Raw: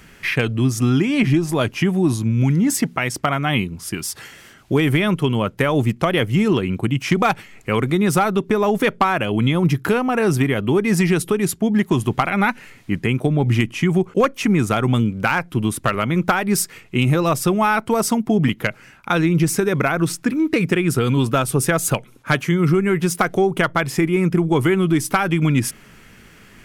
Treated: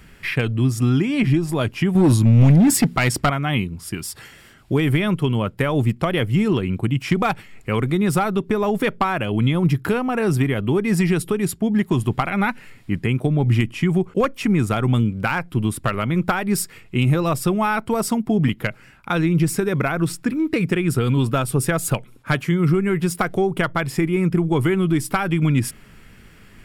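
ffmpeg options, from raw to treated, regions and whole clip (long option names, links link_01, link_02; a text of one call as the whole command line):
ffmpeg -i in.wav -filter_complex "[0:a]asettb=1/sr,asplit=3[link_01][link_02][link_03];[link_01]atrim=end=1.954[link_04];[link_02]atrim=start=1.95:end=3.3,asetpts=PTS-STARTPTS,afade=type=in:duration=0.004:curve=qsin,afade=type=out:start_time=1.346:duration=0.004:curve=qsin,acontrast=88,asoftclip=type=hard:threshold=-8.5dB[link_05];[link_03]atrim=start=3.296[link_06];[link_04][link_05]acrossfade=duration=0.004:curve1=hsin:curve2=qsin[link_07];[link_07][link_06]acrossfade=duration=0.004:curve1=qsin:curve2=hsin,lowshelf=frequency=120:gain=8.5,bandreject=frequency=6200:width=7.8,volume=-3.5dB" out.wav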